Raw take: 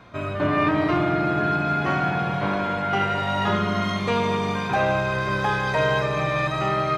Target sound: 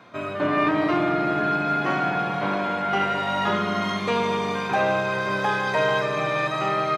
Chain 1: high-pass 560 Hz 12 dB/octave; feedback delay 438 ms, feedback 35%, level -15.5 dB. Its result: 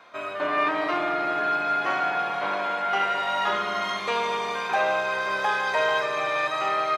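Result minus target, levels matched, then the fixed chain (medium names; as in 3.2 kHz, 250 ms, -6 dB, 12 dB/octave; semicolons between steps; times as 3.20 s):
250 Hz band -9.5 dB
high-pass 190 Hz 12 dB/octave; feedback delay 438 ms, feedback 35%, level -15.5 dB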